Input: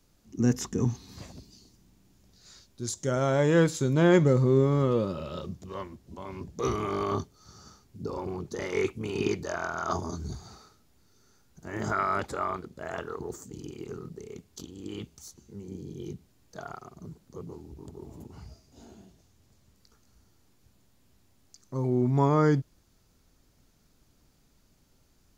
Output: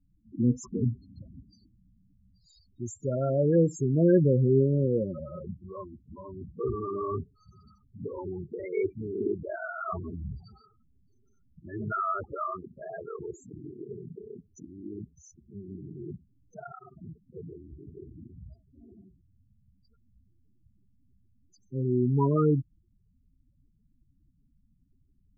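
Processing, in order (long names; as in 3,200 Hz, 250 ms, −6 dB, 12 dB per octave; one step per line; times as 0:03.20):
spectral peaks only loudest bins 8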